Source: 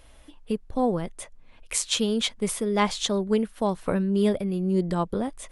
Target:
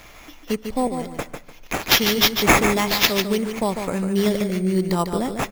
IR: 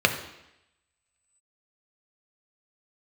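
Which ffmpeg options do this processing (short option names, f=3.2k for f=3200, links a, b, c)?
-filter_complex "[0:a]alimiter=limit=-16dB:level=0:latency=1:release=240,asettb=1/sr,asplit=3[a][b][c];[a]atrim=end=0.874[d];[b]atrim=start=0.87:end=1.88,asetpts=PTS-STARTPTS,afade=t=in:d=0.004:c=qsin,afade=t=out:st=1.006:d=0.004:c=qsin,acrossover=split=700|4200[e][f][g];[e]acompressor=threshold=-33dB:ratio=4[h];[f]acompressor=threshold=-50dB:ratio=4[i];[g]acompressor=threshold=-45dB:ratio=4[j];[h][i][j]amix=inputs=3:normalize=0[k];[c]atrim=start=1.876[l];[d][k]acrossfade=d=0.004:c1=hsin:c2=qsin[m];[m][l]acrossfade=d=0.004:c1=qsin:c2=hsin,crystalizer=i=5:c=0,acrusher=samples=5:mix=1:aa=0.000001,aecho=1:1:148|296|444:0.447|0.112|0.0279,asplit=2[n][o];[1:a]atrim=start_sample=2205,asetrate=26019,aresample=44100[p];[o][p]afir=irnorm=-1:irlink=0,volume=-34dB[q];[n][q]amix=inputs=2:normalize=0,volume=2dB"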